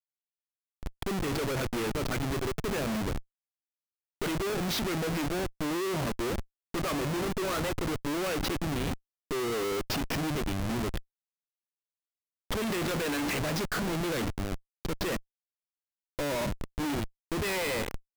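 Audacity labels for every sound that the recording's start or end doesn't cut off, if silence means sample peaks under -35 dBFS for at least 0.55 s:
0.830000	3.190000	sound
4.220000	10.990000	sound
12.510000	15.180000	sound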